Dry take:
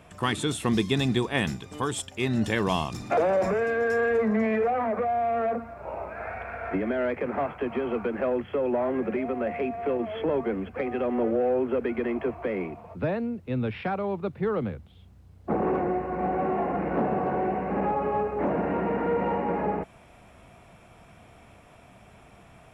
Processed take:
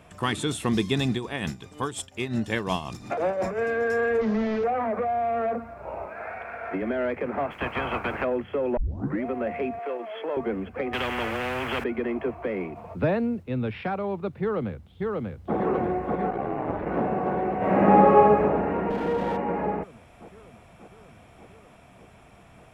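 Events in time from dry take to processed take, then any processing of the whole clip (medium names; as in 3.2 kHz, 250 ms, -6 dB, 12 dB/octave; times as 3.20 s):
1.12–3.58 s: tremolo 5.6 Hz, depth 63%
4.21–4.64 s: one-bit delta coder 32 kbps, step -45 dBFS
6.06–6.82 s: high-pass 230 Hz 6 dB/octave
7.50–8.23 s: spectral peaks clipped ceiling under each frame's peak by 22 dB
8.77 s: tape start 0.47 s
9.79–10.37 s: high-pass 530 Hz
10.93–11.84 s: spectrum-flattening compressor 4:1
12.76–13.43 s: gain +4 dB
14.41–15.56 s: echo throw 590 ms, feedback 75%, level -2 dB
16.29–16.85 s: ring modulator 24 Hz -> 130 Hz
17.57–18.37 s: reverb throw, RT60 1.2 s, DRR -9.5 dB
18.90–19.37 s: sliding maximum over 9 samples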